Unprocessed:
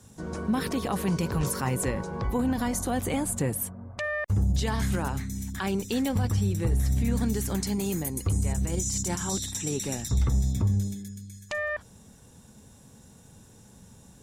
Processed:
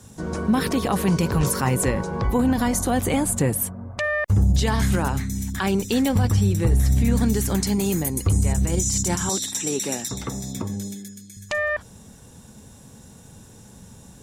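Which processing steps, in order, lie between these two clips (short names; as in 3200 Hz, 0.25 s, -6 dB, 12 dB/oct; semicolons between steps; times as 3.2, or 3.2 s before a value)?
9.29–11.37 HPF 240 Hz 12 dB/oct; gain +6.5 dB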